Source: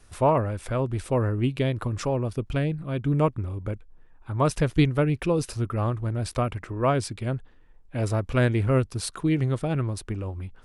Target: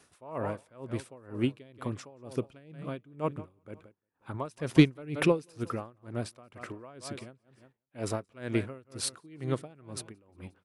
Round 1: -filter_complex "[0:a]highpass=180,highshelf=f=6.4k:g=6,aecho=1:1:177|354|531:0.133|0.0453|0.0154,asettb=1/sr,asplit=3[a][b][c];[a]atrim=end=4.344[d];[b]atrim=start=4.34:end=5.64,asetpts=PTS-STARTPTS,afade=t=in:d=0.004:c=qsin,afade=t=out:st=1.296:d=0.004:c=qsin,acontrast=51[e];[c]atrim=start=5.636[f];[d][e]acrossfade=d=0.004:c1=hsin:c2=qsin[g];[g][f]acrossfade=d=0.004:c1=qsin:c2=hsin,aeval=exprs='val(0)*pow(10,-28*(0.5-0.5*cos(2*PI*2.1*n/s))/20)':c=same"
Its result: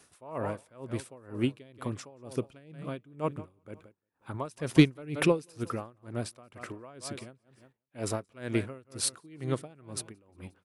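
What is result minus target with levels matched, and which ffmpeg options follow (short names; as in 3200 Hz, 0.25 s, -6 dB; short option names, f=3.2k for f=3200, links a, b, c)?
8000 Hz band +3.5 dB
-filter_complex "[0:a]highpass=180,aecho=1:1:177|354|531:0.133|0.0453|0.0154,asettb=1/sr,asplit=3[a][b][c];[a]atrim=end=4.344[d];[b]atrim=start=4.34:end=5.64,asetpts=PTS-STARTPTS,afade=t=in:d=0.004:c=qsin,afade=t=out:st=1.296:d=0.004:c=qsin,acontrast=51[e];[c]atrim=start=5.636[f];[d][e]acrossfade=d=0.004:c1=hsin:c2=qsin[g];[g][f]acrossfade=d=0.004:c1=qsin:c2=hsin,aeval=exprs='val(0)*pow(10,-28*(0.5-0.5*cos(2*PI*2.1*n/s))/20)':c=same"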